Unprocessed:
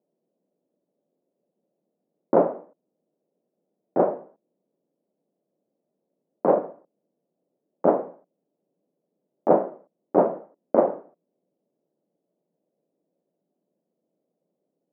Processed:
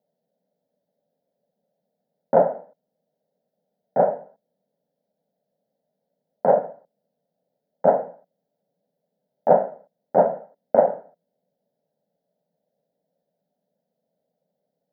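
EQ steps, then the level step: static phaser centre 1.7 kHz, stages 8; +5.0 dB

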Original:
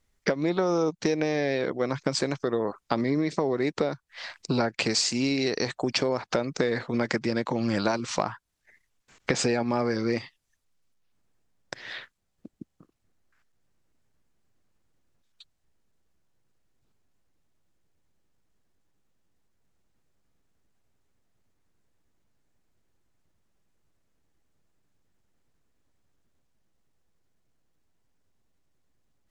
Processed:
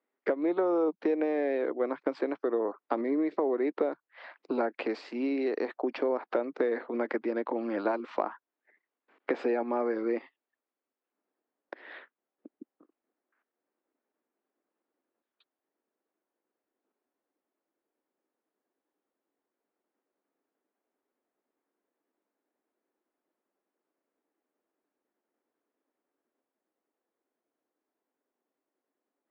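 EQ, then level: steep high-pass 270 Hz 36 dB/octave; distance through air 440 m; treble shelf 2.4 kHz -10 dB; 0.0 dB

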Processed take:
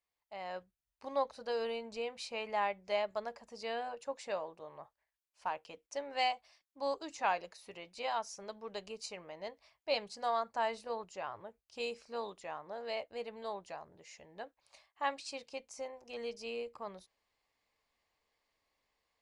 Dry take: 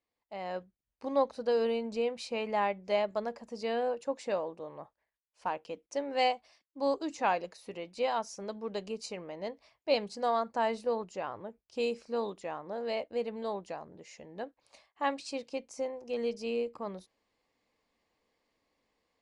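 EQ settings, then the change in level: peaking EQ 250 Hz -11 dB 1.7 oct; band-stop 500 Hz, Q 14; -1.5 dB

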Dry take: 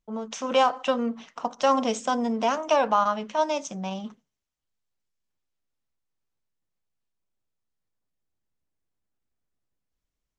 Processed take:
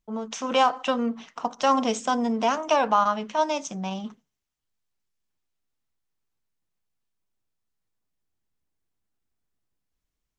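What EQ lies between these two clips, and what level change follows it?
peaking EQ 550 Hz -4 dB 0.31 oct; +1.5 dB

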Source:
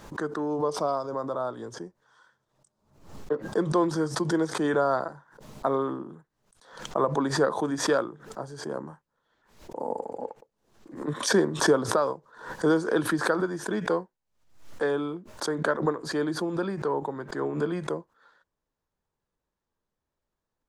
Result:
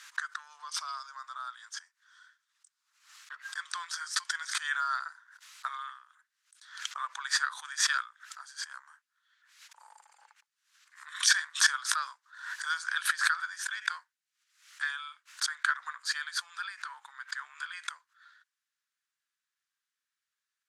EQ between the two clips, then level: steep high-pass 1.4 kHz 36 dB/octave; low-pass 11 kHz 12 dB/octave; +4.5 dB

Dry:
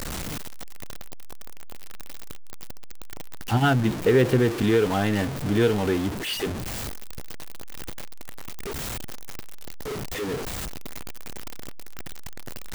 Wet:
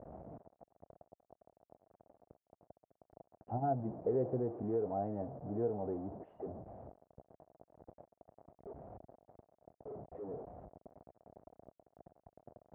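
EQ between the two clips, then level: high-pass 68 Hz 12 dB/octave; four-pole ladder low-pass 750 Hz, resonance 65%; distance through air 78 m; -6.5 dB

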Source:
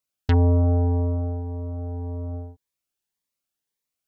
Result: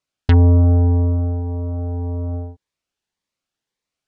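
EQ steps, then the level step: dynamic bell 660 Hz, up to -6 dB, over -36 dBFS, Q 0.81; distance through air 81 m; +7.0 dB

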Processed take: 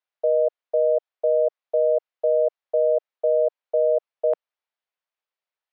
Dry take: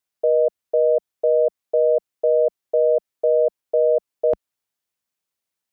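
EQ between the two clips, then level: high-pass 490 Hz 24 dB/octave; distance through air 240 m; 0.0 dB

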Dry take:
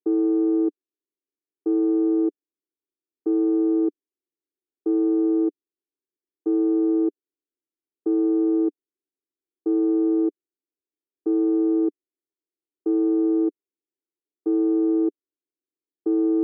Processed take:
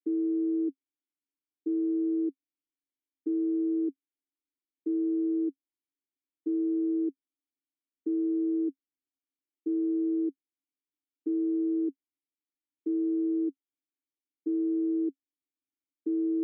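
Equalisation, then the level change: vowel filter i; bass shelf 150 Hz -10.5 dB; +5.0 dB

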